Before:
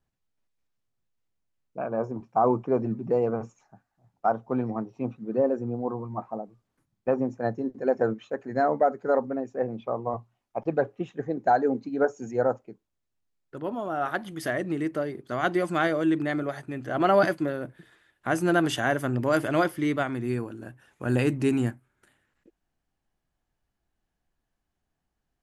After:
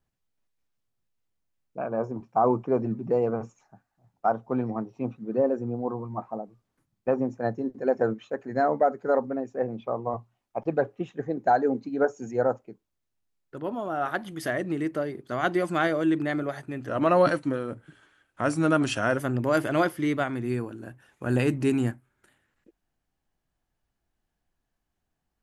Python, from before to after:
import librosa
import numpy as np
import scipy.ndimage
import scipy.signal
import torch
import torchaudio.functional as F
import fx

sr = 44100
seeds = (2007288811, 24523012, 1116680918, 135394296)

y = fx.edit(x, sr, fx.speed_span(start_s=16.88, length_s=2.09, speed=0.91), tone=tone)